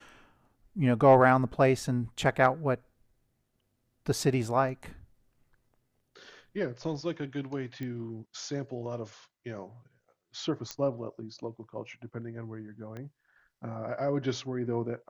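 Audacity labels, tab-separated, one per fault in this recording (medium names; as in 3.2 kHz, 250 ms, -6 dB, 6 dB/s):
7.830000	7.830000	pop -26 dBFS
10.710000	10.710000	pop -20 dBFS
12.970000	12.970000	pop -29 dBFS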